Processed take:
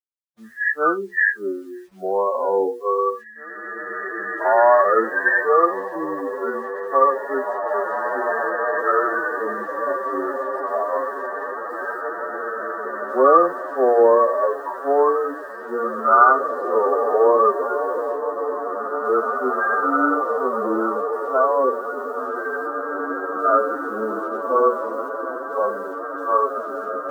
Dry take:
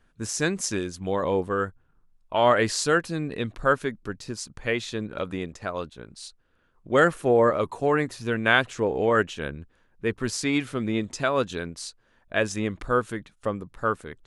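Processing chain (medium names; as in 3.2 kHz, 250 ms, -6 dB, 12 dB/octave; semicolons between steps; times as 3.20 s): knee-point frequency compression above 1.1 kHz 4:1; high-pass 320 Hz 24 dB/octave; hum notches 60/120/180/240/300/360/420/480/540 Hz; in parallel at +1 dB: compression 6:1, threshold -31 dBFS, peak gain reduction 17 dB; on the sum: spectral noise reduction 28 dB; word length cut 10-bit, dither none; on a send: echo that smears into a reverb 1849 ms, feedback 52%, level -5 dB; on the sum: time stretch by phase-locked vocoder 1.9×; trim +3.5 dB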